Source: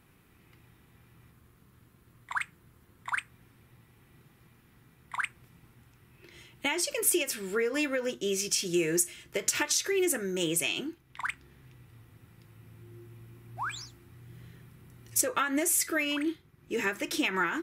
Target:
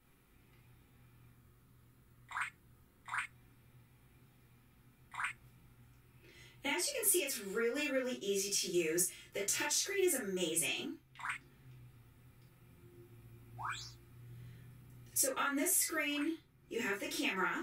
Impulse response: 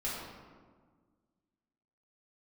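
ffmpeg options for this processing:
-filter_complex "[0:a]highshelf=frequency=6100:gain=4.5[link_01];[1:a]atrim=start_sample=2205,atrim=end_sample=3087[link_02];[link_01][link_02]afir=irnorm=-1:irlink=0,volume=-8.5dB"

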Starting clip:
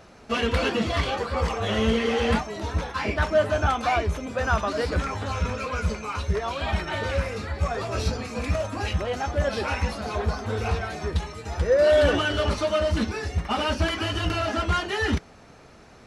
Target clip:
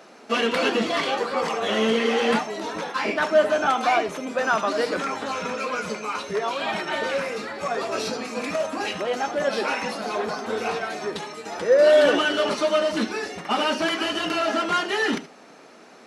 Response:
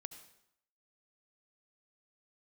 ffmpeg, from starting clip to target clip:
-filter_complex "[0:a]highpass=frequency=220:width=0.5412,highpass=frequency=220:width=1.3066[link_01];[1:a]atrim=start_sample=2205,afade=type=out:start_time=0.13:duration=0.01,atrim=end_sample=6174[link_02];[link_01][link_02]afir=irnorm=-1:irlink=0,volume=8dB"

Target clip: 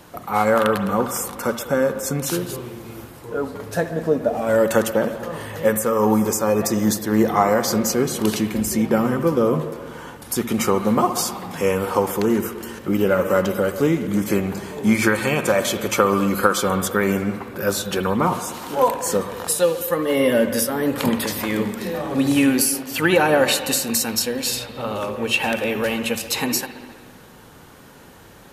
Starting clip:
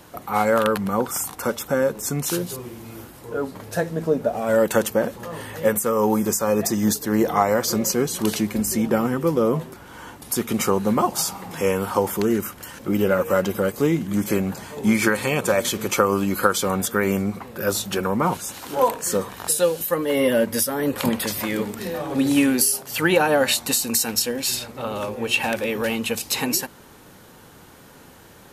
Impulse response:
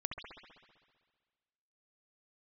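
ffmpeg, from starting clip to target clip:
-filter_complex "[0:a]asplit=2[link_01][link_02];[1:a]atrim=start_sample=2205,highshelf=frequency=8500:gain=-11[link_03];[link_02][link_03]afir=irnorm=-1:irlink=0,volume=-2.5dB[link_04];[link_01][link_04]amix=inputs=2:normalize=0,volume=-2.5dB"

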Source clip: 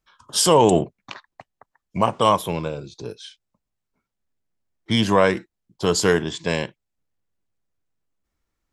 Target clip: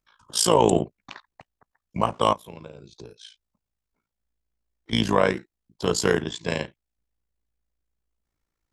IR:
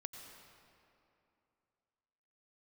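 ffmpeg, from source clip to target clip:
-filter_complex "[0:a]asettb=1/sr,asplit=3[link_01][link_02][link_03];[link_01]atrim=end=2.334[link_04];[link_02]atrim=start=2.33:end=4.93,asetpts=PTS-STARTPTS,afade=type=in:duration=0.004:curve=qsin,afade=type=out:start_time=2.596:duration=0.004:curve=qsin,acompressor=threshold=-36dB:ratio=4[link_05];[link_03]atrim=start=4.926[link_06];[link_04][link_05]acrossfade=duration=0.004:curve1=hsin:curve2=qsin[link_07];[link_07][link_06]acrossfade=duration=0.004:curve1=qsin:curve2=hsin,tremolo=f=56:d=0.824"

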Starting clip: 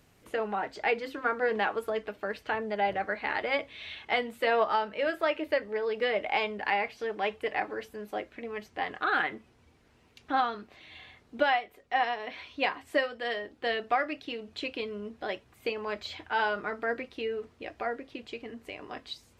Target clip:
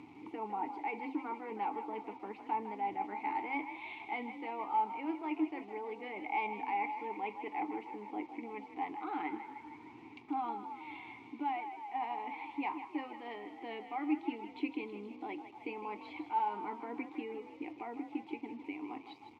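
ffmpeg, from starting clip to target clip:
ffmpeg -i in.wav -filter_complex "[0:a]highshelf=frequency=2200:gain=-12,acompressor=mode=upward:threshold=-38dB:ratio=2.5,asplit=2[link_01][link_02];[link_02]highpass=frequency=720:poles=1,volume=14dB,asoftclip=type=tanh:threshold=-4.5dB[link_03];[link_01][link_03]amix=inputs=2:normalize=0,lowpass=frequency=1000:poles=1,volume=-6dB,areverse,acompressor=threshold=-27dB:ratio=6,areverse,crystalizer=i=4:c=0,asplit=2[link_04][link_05];[link_05]asplit=8[link_06][link_07][link_08][link_09][link_10][link_11][link_12][link_13];[link_06]adelay=156,afreqshift=44,volume=-11dB[link_14];[link_07]adelay=312,afreqshift=88,volume=-15dB[link_15];[link_08]adelay=468,afreqshift=132,volume=-19dB[link_16];[link_09]adelay=624,afreqshift=176,volume=-23dB[link_17];[link_10]adelay=780,afreqshift=220,volume=-27.1dB[link_18];[link_11]adelay=936,afreqshift=264,volume=-31.1dB[link_19];[link_12]adelay=1092,afreqshift=308,volume=-35.1dB[link_20];[link_13]adelay=1248,afreqshift=352,volume=-39.1dB[link_21];[link_14][link_15][link_16][link_17][link_18][link_19][link_20][link_21]amix=inputs=8:normalize=0[link_22];[link_04][link_22]amix=inputs=2:normalize=0,acrusher=bits=7:mix=0:aa=0.5,asplit=3[link_23][link_24][link_25];[link_23]bandpass=frequency=300:width_type=q:width=8,volume=0dB[link_26];[link_24]bandpass=frequency=870:width_type=q:width=8,volume=-6dB[link_27];[link_25]bandpass=frequency=2240:width_type=q:width=8,volume=-9dB[link_28];[link_26][link_27][link_28]amix=inputs=3:normalize=0,equalizer=frequency=110:width=2:gain=11,volume=6dB" out.wav

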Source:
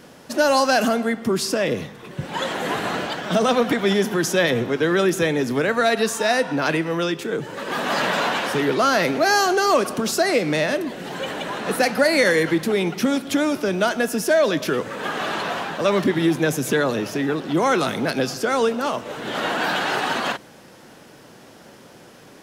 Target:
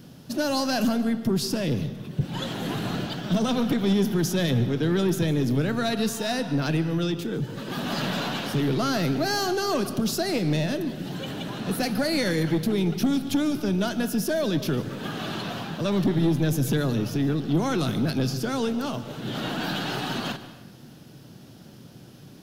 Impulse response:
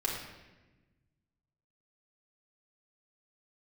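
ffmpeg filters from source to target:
-filter_complex "[0:a]equalizer=frequency=125:width_type=o:width=1:gain=7,equalizer=frequency=500:width_type=o:width=1:gain=-9,equalizer=frequency=1000:width_type=o:width=1:gain=-9,equalizer=frequency=2000:width_type=o:width=1:gain=-11,equalizer=frequency=8000:width_type=o:width=1:gain=-9,aeval=exprs='(tanh(7.94*val(0)+0.2)-tanh(0.2))/7.94':channel_layout=same,asplit=2[link_01][link_02];[1:a]atrim=start_sample=2205,adelay=143[link_03];[link_02][link_03]afir=irnorm=-1:irlink=0,volume=-19dB[link_04];[link_01][link_04]amix=inputs=2:normalize=0,volume=2dB"

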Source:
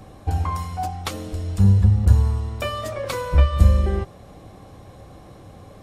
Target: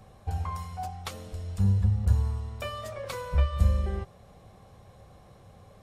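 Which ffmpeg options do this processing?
ffmpeg -i in.wav -af "equalizer=frequency=300:width_type=o:width=0.35:gain=-12.5,volume=-8.5dB" out.wav

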